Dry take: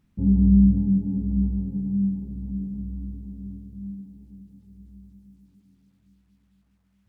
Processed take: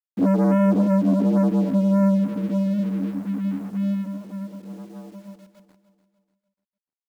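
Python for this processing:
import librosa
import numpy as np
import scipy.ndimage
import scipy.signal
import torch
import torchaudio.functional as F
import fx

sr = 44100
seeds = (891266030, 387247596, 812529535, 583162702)

p1 = fx.rider(x, sr, range_db=4, speed_s=0.5)
p2 = x + (p1 * 10.0 ** (2.5 / 20.0))
p3 = fx.hum_notches(p2, sr, base_hz=60, count=5)
p4 = fx.env_lowpass_down(p3, sr, base_hz=300.0, full_db=-9.5)
p5 = fx.spec_gate(p4, sr, threshold_db=-10, keep='strong')
p6 = fx.leveller(p5, sr, passes=3)
p7 = fx.ladder_highpass(p6, sr, hz=230.0, resonance_pct=40)
p8 = fx.quant_dither(p7, sr, seeds[0], bits=10, dither='none')
p9 = p8 + fx.echo_feedback(p8, sr, ms=296, feedback_pct=42, wet_db=-14.0, dry=0)
y = p9 * 10.0 ** (3.5 / 20.0)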